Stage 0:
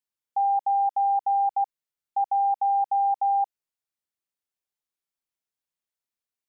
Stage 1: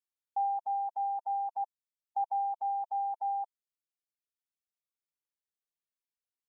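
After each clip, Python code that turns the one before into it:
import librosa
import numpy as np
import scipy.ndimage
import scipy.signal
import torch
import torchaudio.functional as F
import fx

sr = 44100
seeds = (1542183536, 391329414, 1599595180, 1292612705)

y = fx.dereverb_blind(x, sr, rt60_s=1.7)
y = y * librosa.db_to_amplitude(-6.5)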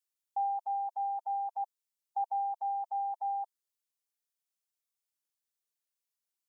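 y = fx.bass_treble(x, sr, bass_db=-12, treble_db=7)
y = y * librosa.db_to_amplitude(-1.0)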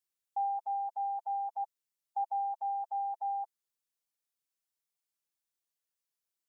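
y = x + 0.37 * np.pad(x, (int(6.0 * sr / 1000.0), 0))[:len(x)]
y = y * librosa.db_to_amplitude(-1.5)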